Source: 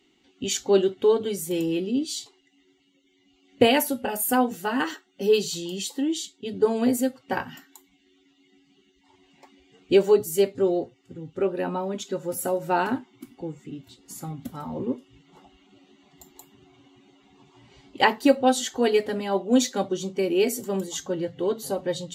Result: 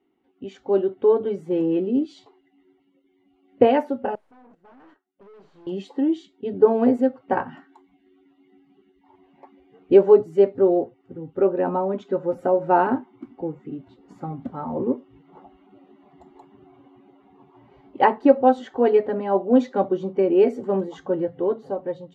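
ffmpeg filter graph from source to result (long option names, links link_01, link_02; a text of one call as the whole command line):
ffmpeg -i in.wav -filter_complex "[0:a]asettb=1/sr,asplit=3[link_01][link_02][link_03];[link_01]atrim=end=4.154[link_04];[link_02]atrim=start=4.15:end=5.67,asetpts=PTS-STARTPTS,afade=type=in:duration=0.004:curve=qsin,afade=type=out:start_time=1.516:duration=0.004:curve=qsin,agate=range=-18dB:threshold=-35dB:ratio=16:release=100:detection=peak,acompressor=threshold=-40dB:ratio=2:attack=3.2:release=140:knee=1:detection=peak,aeval=exprs='(tanh(398*val(0)+0.65)-tanh(0.65))/398':channel_layout=same[link_05];[link_03]atrim=start=5.666[link_06];[link_04][link_05]acrossfade=duration=0.004:curve1=hsin:curve2=qsin[link_07];[link_07][link_06]acrossfade=duration=0.004:curve1=qsin:curve2=hsin,lowpass=1000,lowshelf=frequency=220:gain=-11.5,dynaudnorm=framelen=240:gausssize=9:maxgain=9dB" out.wav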